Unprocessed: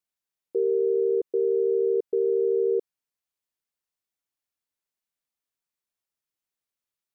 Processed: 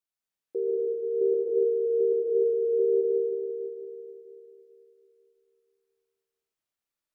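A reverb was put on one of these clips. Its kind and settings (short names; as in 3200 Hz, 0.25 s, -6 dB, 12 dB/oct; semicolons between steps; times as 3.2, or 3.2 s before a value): digital reverb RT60 3.1 s, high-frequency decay 0.6×, pre-delay 95 ms, DRR -5 dB; gain -5 dB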